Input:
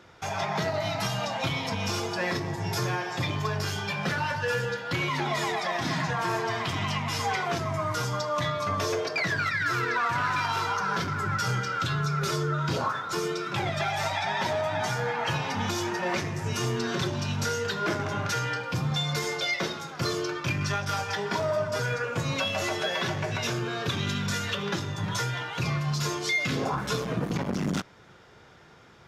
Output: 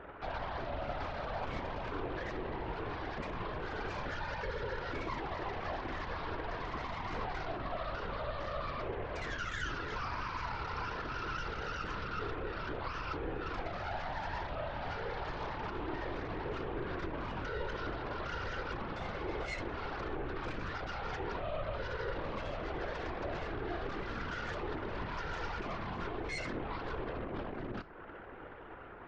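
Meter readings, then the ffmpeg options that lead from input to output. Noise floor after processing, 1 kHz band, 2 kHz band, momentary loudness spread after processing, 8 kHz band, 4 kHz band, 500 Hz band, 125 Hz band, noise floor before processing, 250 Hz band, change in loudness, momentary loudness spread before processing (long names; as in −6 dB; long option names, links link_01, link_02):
−47 dBFS, −9.5 dB, −11.5 dB, 2 LU, −24.0 dB, −16.0 dB, −8.5 dB, −13.5 dB, −51 dBFS, −10.5 dB, −11.0 dB, 4 LU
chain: -af "lowpass=frequency=1700:width=0.5412,lowpass=frequency=1700:width=1.3066,lowshelf=frequency=230:width_type=q:width=1.5:gain=-10.5,acompressor=threshold=-37dB:ratio=8,alimiter=level_in=14dB:limit=-24dB:level=0:latency=1:release=36,volume=-14dB,aeval=exprs='0.0133*(cos(1*acos(clip(val(0)/0.0133,-1,1)))-cos(1*PI/2))+0.00376*(cos(4*acos(clip(val(0)/0.0133,-1,1)))-cos(4*PI/2))':channel_layout=same,flanger=delay=4.6:depth=6.2:regen=84:speed=0.16:shape=triangular,afftfilt=real='hypot(re,im)*cos(2*PI*random(0))':imag='hypot(re,im)*sin(2*PI*random(1))':win_size=512:overlap=0.75,volume=15dB"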